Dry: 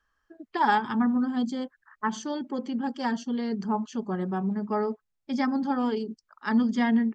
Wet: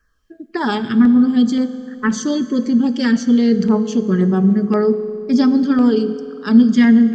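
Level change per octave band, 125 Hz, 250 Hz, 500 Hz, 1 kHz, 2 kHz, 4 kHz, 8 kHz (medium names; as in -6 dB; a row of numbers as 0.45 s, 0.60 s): +15.0 dB, +14.0 dB, +13.0 dB, +0.5 dB, +7.0 dB, +11.0 dB, no reading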